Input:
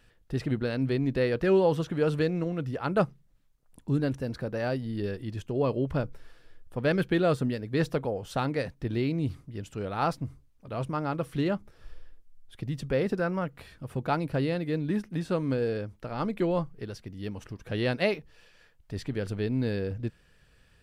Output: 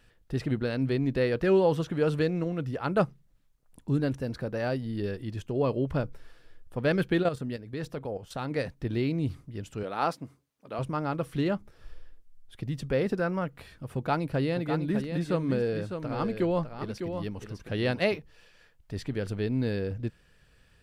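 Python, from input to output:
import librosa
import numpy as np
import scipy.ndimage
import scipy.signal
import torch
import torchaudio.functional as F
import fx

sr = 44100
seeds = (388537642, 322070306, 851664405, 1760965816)

y = fx.level_steps(x, sr, step_db=11, at=(7.22, 8.5), fade=0.02)
y = fx.highpass(y, sr, hz=230.0, slope=12, at=(9.83, 10.79))
y = fx.echo_single(y, sr, ms=604, db=-7.5, at=(14.55, 18.17), fade=0.02)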